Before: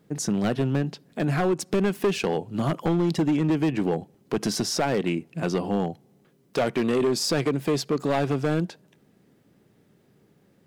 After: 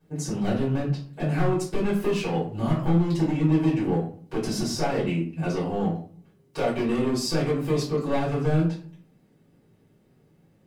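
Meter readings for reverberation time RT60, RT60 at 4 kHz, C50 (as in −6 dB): 0.45 s, 0.30 s, 6.5 dB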